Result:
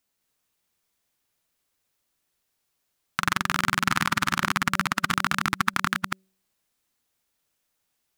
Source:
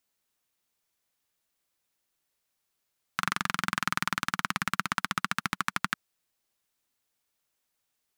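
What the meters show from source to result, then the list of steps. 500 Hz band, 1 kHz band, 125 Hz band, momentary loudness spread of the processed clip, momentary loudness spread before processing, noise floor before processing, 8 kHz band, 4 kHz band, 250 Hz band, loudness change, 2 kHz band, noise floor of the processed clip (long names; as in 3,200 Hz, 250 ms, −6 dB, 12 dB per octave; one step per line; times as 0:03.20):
+6.5 dB, +6.0 dB, +8.0 dB, 6 LU, 4 LU, −81 dBFS, +5.5 dB, +5.5 dB, +7.5 dB, +6.0 dB, +5.5 dB, −77 dBFS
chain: delay that plays each chunk backwards 205 ms, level −2.5 dB
low-shelf EQ 320 Hz +3.5 dB
hum removal 190 Hz, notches 3
in parallel at −11 dB: bit reduction 5 bits
on the sum: level +1.5 dB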